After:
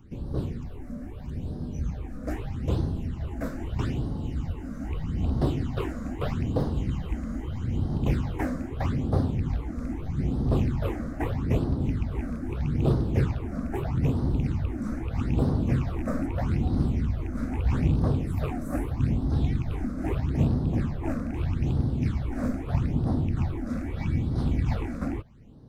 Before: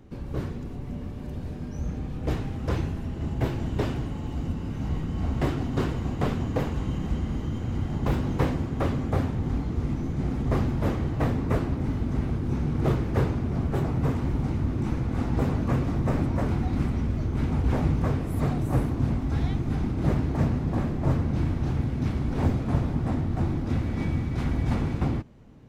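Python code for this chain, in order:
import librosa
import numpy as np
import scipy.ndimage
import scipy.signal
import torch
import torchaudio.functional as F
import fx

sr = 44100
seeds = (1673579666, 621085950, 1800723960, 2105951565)

y = fx.rattle_buzz(x, sr, strikes_db=-20.0, level_db=-31.0)
y = fx.phaser_stages(y, sr, stages=8, low_hz=110.0, high_hz=2400.0, hz=0.79, feedback_pct=25)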